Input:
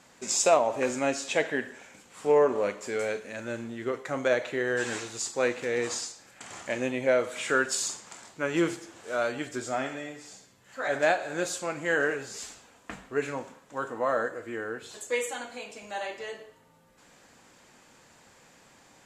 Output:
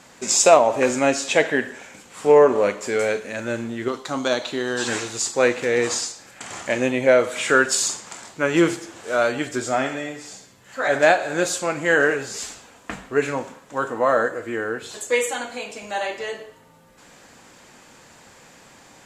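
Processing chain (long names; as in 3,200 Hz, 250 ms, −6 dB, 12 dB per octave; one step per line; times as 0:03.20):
0:03.88–0:04.88: octave-band graphic EQ 125/250/500/1,000/2,000/4,000 Hz −6/+3/−9/+4/−12/+10 dB
level +8.5 dB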